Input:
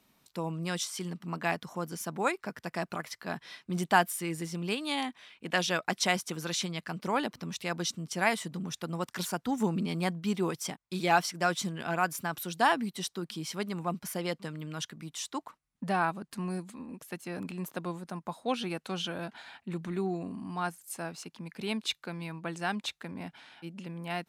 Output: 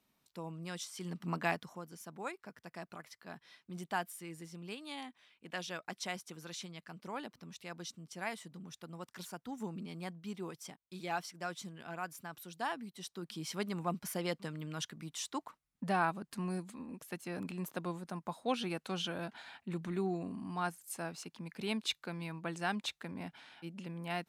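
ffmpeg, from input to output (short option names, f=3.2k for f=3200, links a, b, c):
-af "volume=9.5dB,afade=t=in:st=0.95:d=0.33:silence=0.334965,afade=t=out:st=1.28:d=0.55:silence=0.237137,afade=t=in:st=12.96:d=0.6:silence=0.334965"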